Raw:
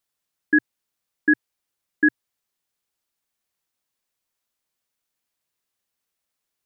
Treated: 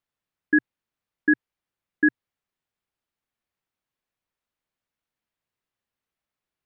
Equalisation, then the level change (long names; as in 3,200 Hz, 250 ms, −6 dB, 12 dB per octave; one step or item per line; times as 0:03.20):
bass and treble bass +4 dB, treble −12 dB
−2.0 dB